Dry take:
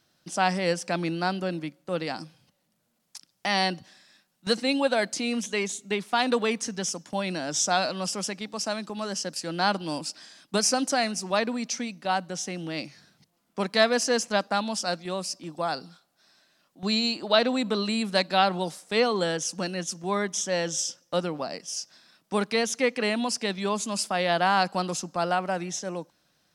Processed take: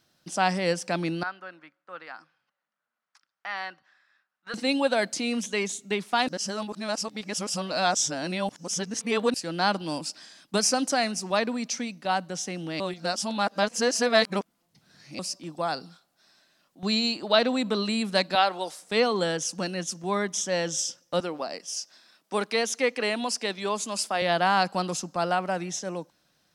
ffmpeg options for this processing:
ffmpeg -i in.wav -filter_complex "[0:a]asettb=1/sr,asplit=3[link_01][link_02][link_03];[link_01]atrim=end=1.234[link_04];[link_02]atrim=start=1.23:end=4.54,asetpts=PTS-STARTPTS,afade=type=in:duration=0.004:curve=qsin,afade=type=out:start_time=3.306:duration=0.004:curve=qsin,bandpass=frequency=1400:width_type=q:width=2.5[link_05];[link_03]atrim=start=4.536[link_06];[link_04][link_05]acrossfade=duration=0.004:curve1=hsin:curve2=qsin[link_07];[link_07][link_06]acrossfade=duration=0.004:curve1=qsin:curve2=hsin,asettb=1/sr,asplit=3[link_08][link_09][link_10];[link_08]atrim=end=18.354[link_11];[link_09]atrim=start=18.35:end=18.79,asetpts=PTS-STARTPTS,afade=type=in:duration=0.004:curve=qsin,afade=type=out:start_time=0.436:duration=0.004:curve=qsin,highpass=430[link_12];[link_10]atrim=start=18.786[link_13];[link_11][link_12]acrossfade=duration=0.004:curve1=hsin:curve2=qsin[link_14];[link_14][link_13]acrossfade=duration=0.004:curve1=qsin:curve2=hsin,asettb=1/sr,asplit=3[link_15][link_16][link_17];[link_15]atrim=end=21.204[link_18];[link_16]atrim=start=21.2:end=24.22,asetpts=PTS-STARTPTS,afade=type=in:duration=0.004:curve=qsin,afade=type=out:start_time=3.016:duration=0.004:curve=qsin,highpass=270[link_19];[link_17]atrim=start=24.216[link_20];[link_18][link_19]acrossfade=duration=0.004:curve1=hsin:curve2=qsin[link_21];[link_21][link_20]acrossfade=duration=0.004:curve1=qsin:curve2=hsin,asplit=5[link_22][link_23][link_24][link_25][link_26];[link_22]atrim=end=6.282[link_27];[link_23]atrim=start=6.278:end=9.342,asetpts=PTS-STARTPTS,areverse[link_28];[link_24]atrim=start=9.338:end=12.802[link_29];[link_25]atrim=start=12.798:end=15.192,asetpts=PTS-STARTPTS,areverse[link_30];[link_26]atrim=start=15.188[link_31];[link_27][link_28]acrossfade=duration=0.004:curve1=hsin:curve2=hsin[link_32];[link_32][link_29]acrossfade=duration=0.004:curve1=hsin:curve2=hsin[link_33];[link_33][link_30]acrossfade=duration=0.004:curve1=hsin:curve2=hsin[link_34];[link_34][link_31]acrossfade=duration=0.004:curve1=hsin:curve2=hsin" out.wav

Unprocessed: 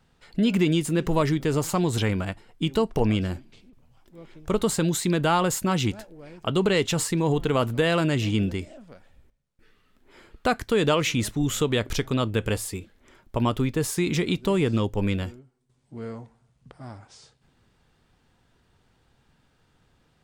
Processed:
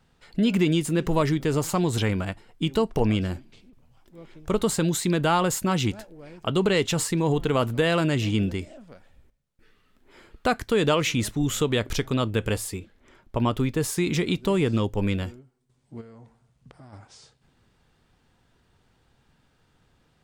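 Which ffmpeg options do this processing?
ffmpeg -i in.wav -filter_complex "[0:a]asettb=1/sr,asplit=3[link_01][link_02][link_03];[link_01]atrim=end=12.754[link_04];[link_02]atrim=start=12.75:end=13.57,asetpts=PTS-STARTPTS,afade=type=in:duration=0.004:curve=qsin,afade=type=out:start_time=0.816:duration=0.004:curve=qsin,highshelf=frequency=6700:gain=-7[link_05];[link_03]atrim=start=13.566[link_06];[link_04][link_05]acrossfade=duration=0.004:curve1=hsin:curve2=qsin[link_07];[link_07][link_06]acrossfade=duration=0.004:curve1=qsin:curve2=hsin,asplit=3[link_08][link_09][link_10];[link_08]afade=type=out:start_time=16:duration=0.02[link_11];[link_09]acompressor=threshold=-43dB:ratio=6:attack=3.2:release=140:knee=1:detection=peak,afade=type=in:start_time=16:duration=0.02,afade=type=out:start_time=16.92:duration=0.02[link_12];[link_10]afade=type=in:start_time=16.92:duration=0.02[link_13];[link_11][link_12][link_13]amix=inputs=3:normalize=0" out.wav

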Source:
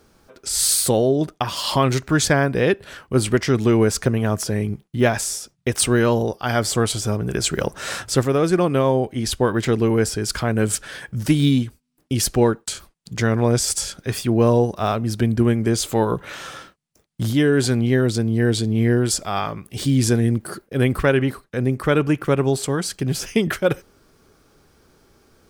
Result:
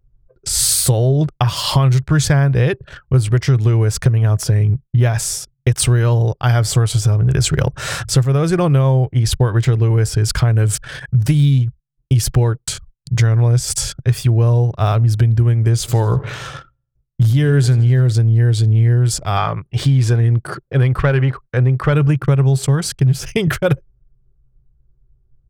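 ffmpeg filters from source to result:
ffmpeg -i in.wav -filter_complex "[0:a]asplit=3[link_01][link_02][link_03];[link_01]afade=type=out:start_time=15.87:duration=0.02[link_04];[link_02]aecho=1:1:84|168|252|336|420:0.119|0.0689|0.04|0.0232|0.0134,afade=type=in:start_time=15.87:duration=0.02,afade=type=out:start_time=18.12:duration=0.02[link_05];[link_03]afade=type=in:start_time=18.12:duration=0.02[link_06];[link_04][link_05][link_06]amix=inputs=3:normalize=0,asettb=1/sr,asplit=3[link_07][link_08][link_09];[link_07]atrim=end=19.374[link_10];[link_08]atrim=start=19.37:end=21.93,asetpts=PTS-STARTPTS,afade=type=in:duration=0.004:curve=qsin,afade=type=out:start_time=2.556:duration=0.004:curve=qsin,asplit=2[link_11][link_12];[link_12]highpass=frequency=720:poles=1,volume=11dB,asoftclip=type=tanh:threshold=-5.5dB[link_13];[link_11][link_13]amix=inputs=2:normalize=0,lowpass=frequency=1800:poles=1,volume=-6dB[link_14];[link_09]atrim=start=21.926[link_15];[link_10][link_14]acrossfade=duration=0.004:curve1=hsin:curve2=qsin[link_16];[link_16][link_15]acrossfade=duration=0.004:curve1=qsin:curve2=hsin,anlmdn=2.51,lowshelf=frequency=170:width_type=q:width=3:gain=8,acompressor=threshold=-15dB:ratio=6,volume=4.5dB" out.wav

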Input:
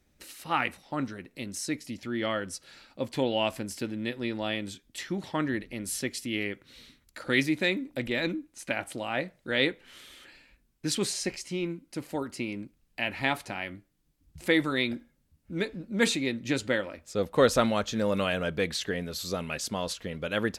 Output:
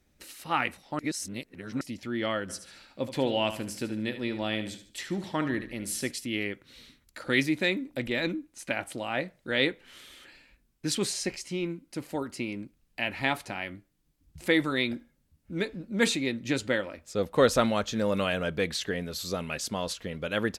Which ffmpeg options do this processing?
ffmpeg -i in.wav -filter_complex "[0:a]asplit=3[link_01][link_02][link_03];[link_01]afade=type=out:start_time=2.48:duration=0.02[link_04];[link_02]aecho=1:1:74|148|222|296:0.282|0.101|0.0365|0.0131,afade=type=in:start_time=2.48:duration=0.02,afade=type=out:start_time=6.1:duration=0.02[link_05];[link_03]afade=type=in:start_time=6.1:duration=0.02[link_06];[link_04][link_05][link_06]amix=inputs=3:normalize=0,asplit=3[link_07][link_08][link_09];[link_07]atrim=end=0.992[link_10];[link_08]atrim=start=0.988:end=1.812,asetpts=PTS-STARTPTS,areverse[link_11];[link_09]atrim=start=1.808[link_12];[link_10][link_11]acrossfade=duration=0.004:curve1=hsin:curve2=hsin[link_13];[link_13][link_12]acrossfade=duration=0.004:curve1=hsin:curve2=hsin" out.wav

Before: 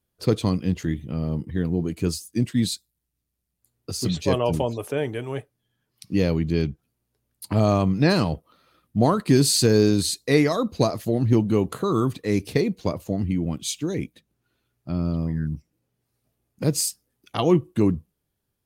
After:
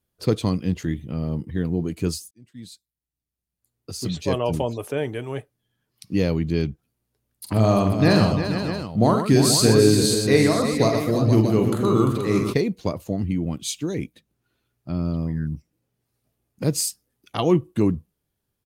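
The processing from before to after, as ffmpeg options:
ffmpeg -i in.wav -filter_complex "[0:a]asplit=3[link_01][link_02][link_03];[link_01]afade=type=out:start_time=7.45:duration=0.02[link_04];[link_02]aecho=1:1:45|123|345|479|632:0.501|0.398|0.376|0.355|0.299,afade=type=in:start_time=7.45:duration=0.02,afade=type=out:start_time=12.52:duration=0.02[link_05];[link_03]afade=type=in:start_time=12.52:duration=0.02[link_06];[link_04][link_05][link_06]amix=inputs=3:normalize=0,asplit=2[link_07][link_08];[link_07]atrim=end=2.31,asetpts=PTS-STARTPTS,afade=type=out:start_time=2.306:duration=0.004:curve=hsin[link_09];[link_08]atrim=start=2.31,asetpts=PTS-STARTPTS,afade=type=in:duration=2.39[link_10];[link_09][link_10]concat=n=2:v=0:a=1" out.wav

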